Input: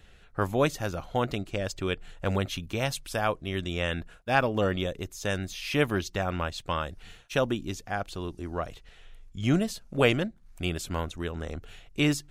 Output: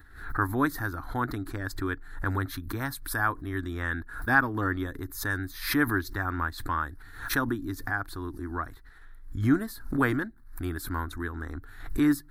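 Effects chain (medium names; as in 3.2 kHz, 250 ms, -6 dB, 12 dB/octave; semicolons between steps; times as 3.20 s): FFT filter 110 Hz 0 dB, 190 Hz -12 dB, 280 Hz +6 dB, 560 Hz -16 dB, 940 Hz +1 dB, 1.7 kHz +7 dB, 2.8 kHz -24 dB, 4 kHz -5 dB, 6.6 kHz -14 dB, 12 kHz +6 dB; swell ahead of each attack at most 93 dB/s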